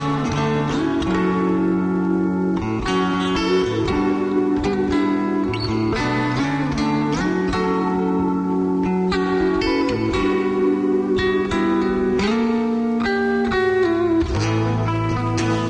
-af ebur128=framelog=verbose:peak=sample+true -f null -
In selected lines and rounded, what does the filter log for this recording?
Integrated loudness:
  I:         -19.9 LUFS
  Threshold: -29.9 LUFS
Loudness range:
  LRA:         1.1 LU
  Threshold: -39.8 LUFS
  LRA low:   -20.4 LUFS
  LRA high:  -19.3 LUFS
Sample peak:
  Peak:       -8.8 dBFS
True peak:
  Peak:       -8.8 dBFS